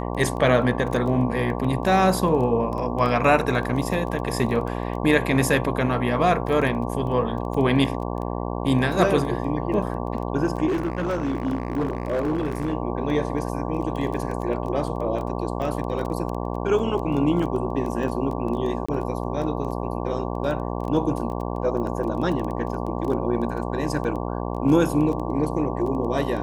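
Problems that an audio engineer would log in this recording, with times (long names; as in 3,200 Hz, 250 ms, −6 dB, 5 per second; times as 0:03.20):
mains buzz 60 Hz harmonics 19 −28 dBFS
surface crackle 13 per second −29 dBFS
0:10.67–0:12.73: clipping −20 dBFS
0:18.86–0:18.89: drop-out 25 ms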